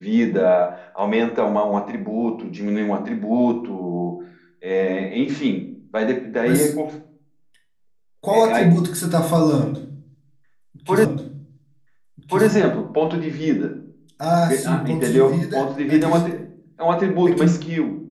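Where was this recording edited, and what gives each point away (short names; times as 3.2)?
11.05 repeat of the last 1.43 s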